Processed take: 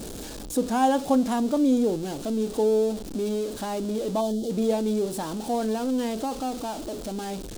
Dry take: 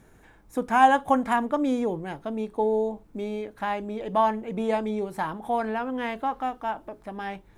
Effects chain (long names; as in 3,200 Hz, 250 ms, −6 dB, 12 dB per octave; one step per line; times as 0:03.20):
converter with a step at zero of −30 dBFS
octave-band graphic EQ 125/250/500/1,000/2,000/4,000/8,000 Hz −5/+6/+4/−6/−11/+5/+6 dB
gain on a spectral selection 0:04.21–0:04.50, 820–2,900 Hz −14 dB
level −2.5 dB